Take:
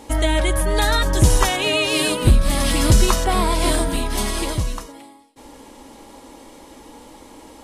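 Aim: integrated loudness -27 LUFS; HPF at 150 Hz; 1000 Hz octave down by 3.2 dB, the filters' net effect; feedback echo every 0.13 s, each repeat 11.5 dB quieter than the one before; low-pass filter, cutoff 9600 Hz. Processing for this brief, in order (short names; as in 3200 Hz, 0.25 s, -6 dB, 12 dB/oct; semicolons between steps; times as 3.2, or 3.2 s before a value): HPF 150 Hz; LPF 9600 Hz; bell 1000 Hz -4 dB; feedback echo 0.13 s, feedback 27%, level -11.5 dB; gain -5.5 dB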